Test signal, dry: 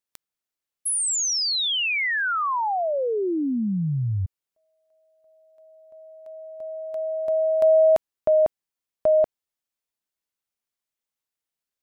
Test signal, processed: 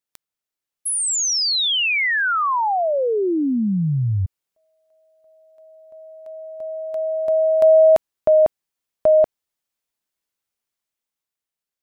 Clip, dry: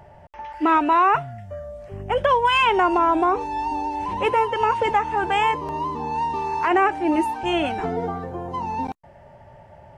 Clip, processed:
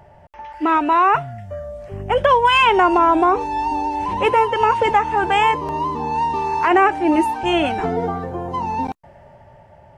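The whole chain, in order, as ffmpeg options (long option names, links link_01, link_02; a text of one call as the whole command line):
ffmpeg -i in.wav -af "dynaudnorm=framelen=160:gausssize=13:maxgain=4.5dB" out.wav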